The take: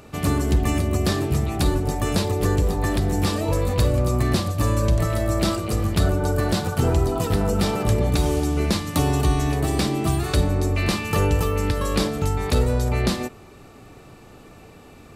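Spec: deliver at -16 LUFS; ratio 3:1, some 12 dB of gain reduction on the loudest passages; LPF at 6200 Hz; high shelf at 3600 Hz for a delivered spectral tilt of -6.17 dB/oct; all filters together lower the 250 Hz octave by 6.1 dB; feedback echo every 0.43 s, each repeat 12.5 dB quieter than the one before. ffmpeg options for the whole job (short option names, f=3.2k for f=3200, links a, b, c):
-af "lowpass=6.2k,equalizer=f=250:t=o:g=-9,highshelf=f=3.6k:g=-3.5,acompressor=threshold=-32dB:ratio=3,aecho=1:1:430|860|1290:0.237|0.0569|0.0137,volume=17.5dB"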